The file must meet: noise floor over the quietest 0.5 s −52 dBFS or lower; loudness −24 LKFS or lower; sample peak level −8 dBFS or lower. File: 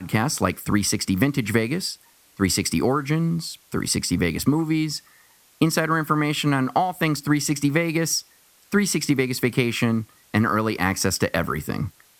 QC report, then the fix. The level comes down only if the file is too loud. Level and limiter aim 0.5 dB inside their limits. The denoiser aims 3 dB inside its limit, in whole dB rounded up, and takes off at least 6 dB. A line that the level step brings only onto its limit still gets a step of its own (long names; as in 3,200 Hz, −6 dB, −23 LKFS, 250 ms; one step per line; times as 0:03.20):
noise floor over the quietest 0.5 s −56 dBFS: in spec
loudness −23.0 LKFS: out of spec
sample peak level −4.5 dBFS: out of spec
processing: level −1.5 dB
brickwall limiter −8.5 dBFS